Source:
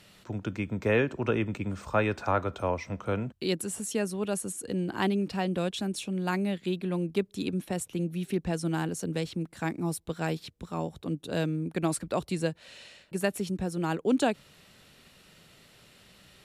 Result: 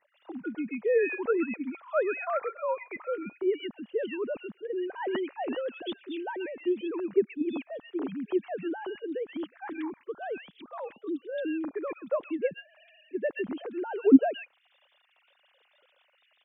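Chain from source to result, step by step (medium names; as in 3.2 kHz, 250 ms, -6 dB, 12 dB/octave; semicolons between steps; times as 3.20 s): formants replaced by sine waves; bands offset in time lows, highs 130 ms, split 1.8 kHz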